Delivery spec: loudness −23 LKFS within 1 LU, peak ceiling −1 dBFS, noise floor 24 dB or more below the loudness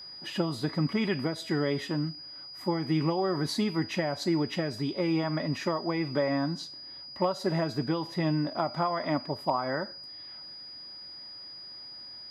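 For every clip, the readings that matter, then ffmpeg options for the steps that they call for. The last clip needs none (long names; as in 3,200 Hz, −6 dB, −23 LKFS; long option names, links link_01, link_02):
interfering tone 4,900 Hz; level of the tone −42 dBFS; integrated loudness −30.0 LKFS; sample peak −13.5 dBFS; target loudness −23.0 LKFS
→ -af "bandreject=frequency=4900:width=30"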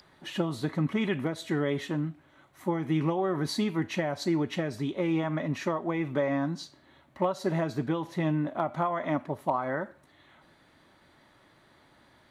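interfering tone none found; integrated loudness −30.5 LKFS; sample peak −13.5 dBFS; target loudness −23.0 LKFS
→ -af "volume=7.5dB"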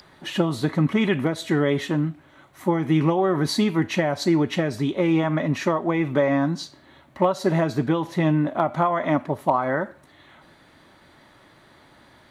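integrated loudness −23.0 LKFS; sample peak −6.0 dBFS; background noise floor −54 dBFS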